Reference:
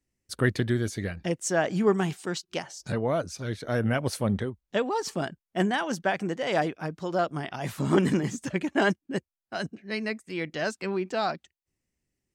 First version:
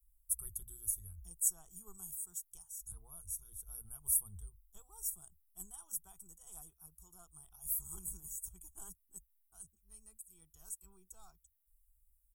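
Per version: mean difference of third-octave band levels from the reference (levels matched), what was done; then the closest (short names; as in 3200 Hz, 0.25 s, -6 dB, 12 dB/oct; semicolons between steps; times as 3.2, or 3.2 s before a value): 18.5 dB: inverse Chebyshev band-stop 110–4900 Hz, stop band 50 dB; comb 0.9 ms, depth 93%; gain +14 dB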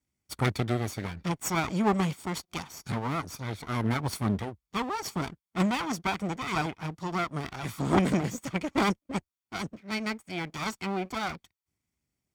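6.0 dB: minimum comb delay 0.89 ms; HPF 57 Hz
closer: second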